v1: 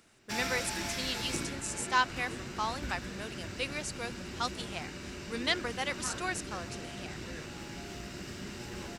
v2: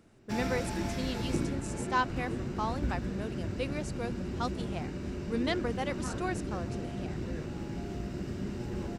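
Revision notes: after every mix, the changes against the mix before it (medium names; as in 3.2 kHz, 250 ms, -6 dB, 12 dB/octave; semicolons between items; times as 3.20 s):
master: add tilt shelf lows +8.5 dB, about 910 Hz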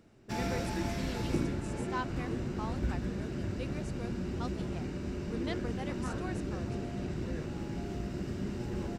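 speech -8.0 dB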